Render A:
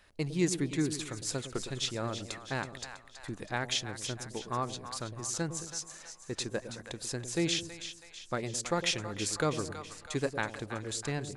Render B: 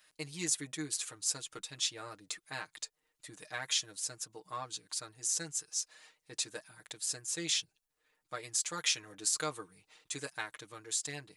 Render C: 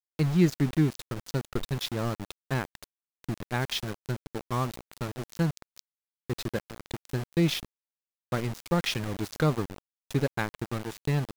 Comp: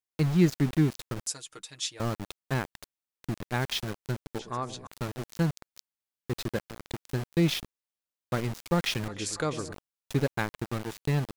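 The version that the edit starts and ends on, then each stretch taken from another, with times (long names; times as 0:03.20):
C
0:01.27–0:02.00: punch in from B
0:04.39–0:04.87: punch in from A
0:09.08–0:09.73: punch in from A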